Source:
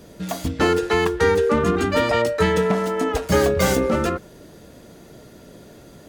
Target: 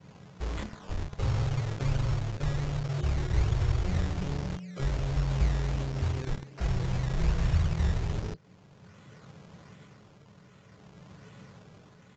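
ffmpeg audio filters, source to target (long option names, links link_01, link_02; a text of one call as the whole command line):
ffmpeg -i in.wav -filter_complex "[0:a]adynamicequalizer=threshold=0.00794:dfrequency=3200:dqfactor=1.3:tfrequency=3200:tqfactor=1.3:attack=5:release=100:ratio=0.375:range=2:mode=cutabove:tftype=bell,asetrate=22050,aresample=44100,tremolo=f=0.53:d=0.51,acrossover=split=170[link_01][link_02];[link_01]acrusher=bits=5:mix=0:aa=0.000001[link_03];[link_02]acompressor=threshold=-39dB:ratio=5[link_04];[link_03][link_04]amix=inputs=2:normalize=0,acrusher=samples=10:mix=1:aa=0.000001:lfo=1:lforange=10:lforate=1.3,equalizer=frequency=64:width=2:gain=-4.5,bandreject=frequency=400:width=12,asetrate=26990,aresample=44100,atempo=1.63392,aresample=16000,aresample=44100" out.wav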